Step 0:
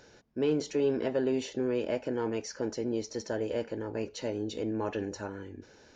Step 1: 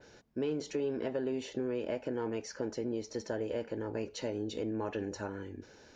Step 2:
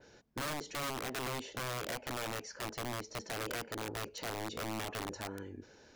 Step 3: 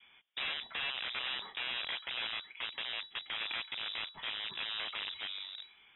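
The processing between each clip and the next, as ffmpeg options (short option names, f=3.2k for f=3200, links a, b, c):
-af "adynamicequalizer=threshold=0.00158:dfrequency=5800:dqfactor=0.92:tfrequency=5800:tqfactor=0.92:attack=5:release=100:ratio=0.375:range=2:mode=cutabove:tftype=bell,acompressor=threshold=-32dB:ratio=3"
-af "aeval=exprs='(mod(31.6*val(0)+1,2)-1)/31.6':c=same,volume=-2.5dB"
-filter_complex "[0:a]acrossover=split=490[a][b];[a]acrusher=bits=5:dc=4:mix=0:aa=0.000001[c];[c][b]amix=inputs=2:normalize=0,lowpass=f=3.3k:t=q:w=0.5098,lowpass=f=3.3k:t=q:w=0.6013,lowpass=f=3.3k:t=q:w=0.9,lowpass=f=3.3k:t=q:w=2.563,afreqshift=-3900,volume=2.5dB"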